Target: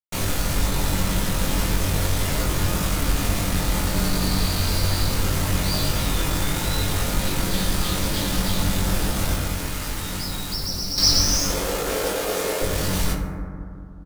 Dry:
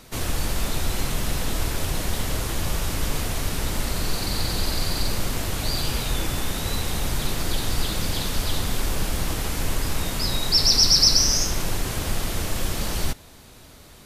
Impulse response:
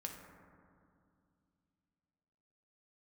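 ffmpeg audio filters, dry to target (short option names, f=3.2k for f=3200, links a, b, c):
-filter_complex "[0:a]asplit=2[a][b];[b]acompressor=threshold=-30dB:ratio=6,volume=-1dB[c];[a][c]amix=inputs=2:normalize=0,asettb=1/sr,asplit=3[d][e][f];[d]atrim=end=11.504[g];[e]atrim=start=11.5:end=12.62,asetpts=PTS-STARTPTS,afade=t=in:d=0.004:c=qsin,afade=t=out:st=1.116:d=0.004:c=qsin,highpass=f=450:t=q:w=4.9[h];[f]atrim=start=12.616[i];[g][h]acrossfade=d=0.004:c1=hsin:c2=qsin[j];[j][i]acrossfade=d=0.004:c1=qsin:c2=hsin,acrusher=bits=3:mix=0:aa=0.5,asplit=2[k][l];[l]adelay=21,volume=-2.5dB[m];[k][m]amix=inputs=2:normalize=0,asettb=1/sr,asplit=3[n][o][p];[n]atrim=end=9.344[q];[o]atrim=start=9.34:end=10.98,asetpts=PTS-STARTPTS,afade=t=in:d=0.004:c=qsin,afade=t=out:st=1.636:d=0.004:c=qsin,acrossover=split=1000|7800[r][s][t];[r]acompressor=threshold=-26dB:ratio=4[u];[s]acompressor=threshold=-29dB:ratio=4[v];[t]acompressor=threshold=-31dB:ratio=4[w];[u][v][w]amix=inputs=3:normalize=0[x];[p]atrim=start=10.976[y];[q][x]acrossfade=d=0.004:c1=hsin:c2=qsin[z];[z][y]acrossfade=d=0.004:c1=qsin:c2=hsin[aa];[1:a]atrim=start_sample=2205[ab];[aa][ab]afir=irnorm=-1:irlink=0"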